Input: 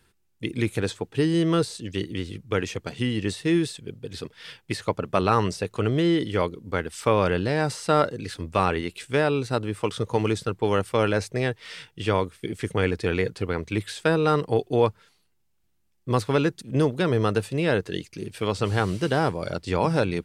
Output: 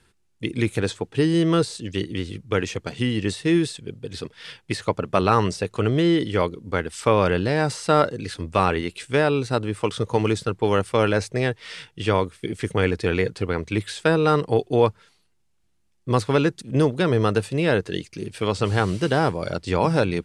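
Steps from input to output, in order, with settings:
low-pass filter 11,000 Hz 24 dB per octave
level +2.5 dB

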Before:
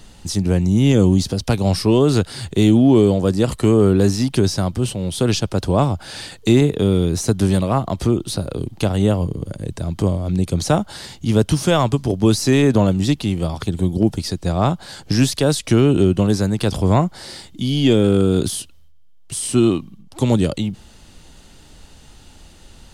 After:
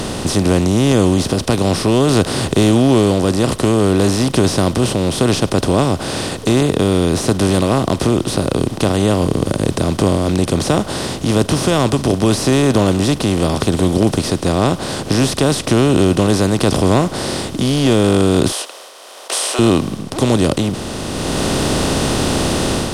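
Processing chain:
compressor on every frequency bin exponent 0.4
0:18.52–0:19.59: high-pass filter 520 Hz 24 dB per octave
automatic gain control gain up to 7.5 dB
level −1 dB

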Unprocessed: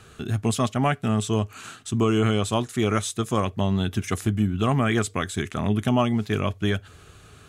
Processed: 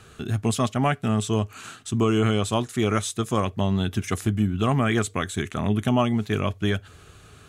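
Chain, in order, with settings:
0:05.03–0:06.37: notch filter 5,000 Hz, Q 8.7

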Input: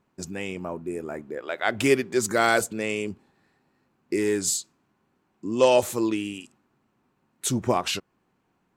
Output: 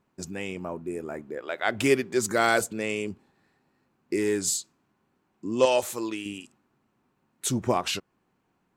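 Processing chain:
0:05.65–0:06.26: low-shelf EQ 410 Hz −9.5 dB
level −1.5 dB

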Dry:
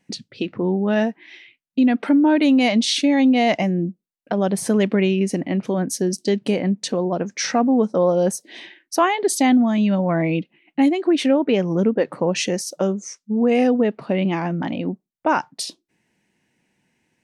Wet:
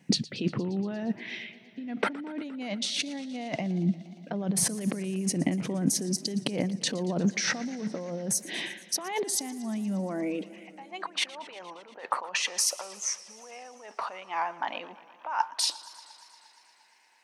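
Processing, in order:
compressor whose output falls as the input rises −29 dBFS, ratio −1
high-pass filter sweep 140 Hz → 930 Hz, 0:09.73–0:10.86
feedback echo with a swinging delay time 117 ms, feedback 78%, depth 108 cents, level −19.5 dB
level −4.5 dB

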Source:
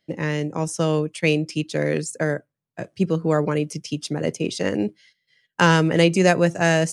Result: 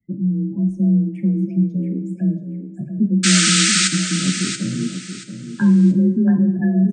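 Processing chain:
RIAA equalisation playback
gate on every frequency bin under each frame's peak −15 dB strong
drawn EQ curve 130 Hz 0 dB, 310 Hz −7 dB, 470 Hz −24 dB, 2,000 Hz +3 dB, 3,800 Hz −29 dB, 7,900 Hz −12 dB
sound drawn into the spectrogram noise, 0:03.23–0:03.88, 1,200–8,900 Hz −15 dBFS
frequency shifter +29 Hz
on a send: repeating echo 680 ms, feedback 27%, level −9 dB
on the sum: coupled-rooms reverb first 0.66 s, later 2.2 s, from −17 dB, DRR 6 dB
level −2 dB

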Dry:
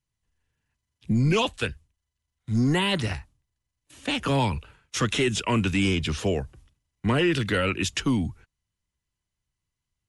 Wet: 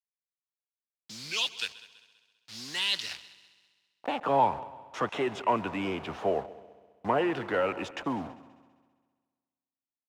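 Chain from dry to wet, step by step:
hold until the input has moved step −34 dBFS
band-pass filter sweep 4,500 Hz → 770 Hz, 0:03.11–0:03.98
on a send: echo machine with several playback heads 66 ms, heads second and third, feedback 48%, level −20 dB
on the sum: level +7 dB

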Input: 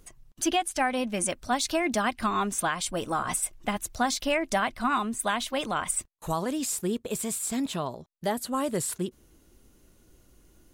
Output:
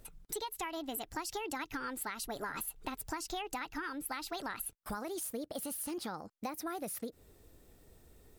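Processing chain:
downward compressor 6 to 1, threshold −35 dBFS, peak gain reduction 13.5 dB
speed change +28%
level −2 dB

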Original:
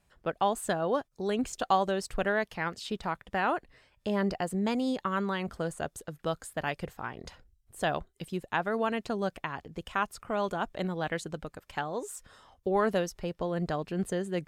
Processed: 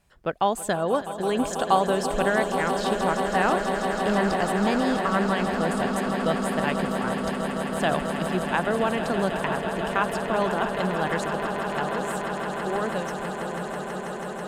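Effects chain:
fade-out on the ending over 3.54 s
echo that builds up and dies away 163 ms, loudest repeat 8, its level −11.5 dB
0:07.91–0:09.58: multiband upward and downward compressor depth 40%
level +4.5 dB

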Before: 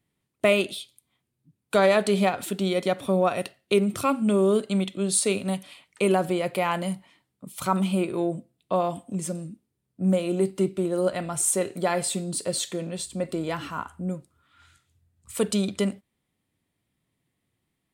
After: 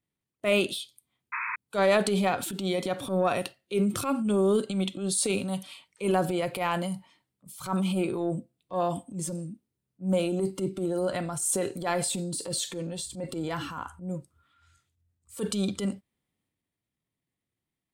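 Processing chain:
transient designer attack −10 dB, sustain +5 dB
noise reduction from a noise print of the clip's start 8 dB
sound drawn into the spectrogram noise, 0:01.32–0:01.56, 900–2,600 Hz −30 dBFS
level −2 dB

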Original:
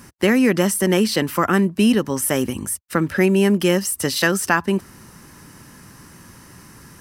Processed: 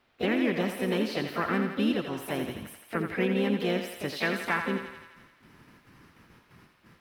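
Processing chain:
noise gate with hold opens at −33 dBFS
pitch-shifted copies added +3 semitones −10 dB, +5 semitones −6 dB
first-order pre-emphasis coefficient 0.8
in parallel at −11 dB: bit-depth reduction 8 bits, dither triangular
on the sum: high-frequency loss of the air 380 metres
on a send: feedback echo with a high-pass in the loop 85 ms, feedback 68%, high-pass 460 Hz, level −6.5 dB

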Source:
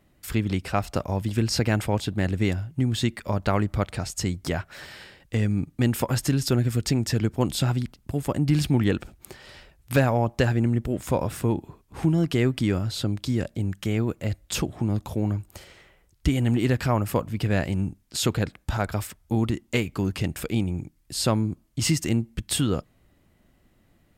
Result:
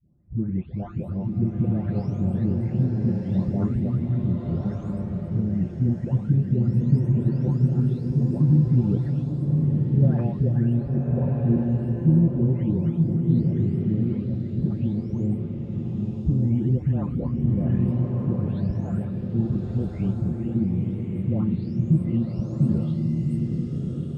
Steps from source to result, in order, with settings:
every frequency bin delayed by itself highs late, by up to 794 ms
resonant band-pass 130 Hz, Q 1.5
slow-attack reverb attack 1,290 ms, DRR 0 dB
level +7 dB

